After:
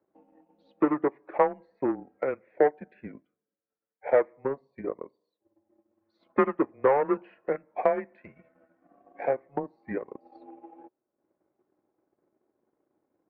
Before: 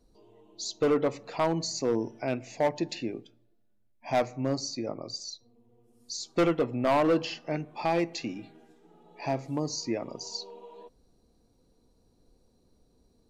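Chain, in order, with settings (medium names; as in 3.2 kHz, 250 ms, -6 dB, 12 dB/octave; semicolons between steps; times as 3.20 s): mistuned SSB -140 Hz 480–2100 Hz; transient shaper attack +9 dB, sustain -8 dB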